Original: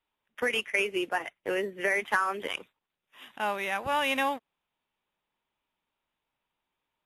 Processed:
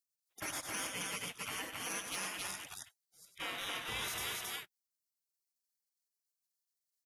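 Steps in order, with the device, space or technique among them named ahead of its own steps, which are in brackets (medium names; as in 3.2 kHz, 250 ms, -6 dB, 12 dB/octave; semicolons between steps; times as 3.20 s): 3.25–4.08 s: tilt EQ -2.5 dB/octave; spectral gate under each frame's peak -25 dB weak; loudspeakers at several distances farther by 33 m -10 dB, 92 m -4 dB; soft clipper into limiter (saturation -32 dBFS, distortion -25 dB; peak limiter -38.5 dBFS, peak gain reduction 5.5 dB); bass shelf 62 Hz -11 dB; trim +9 dB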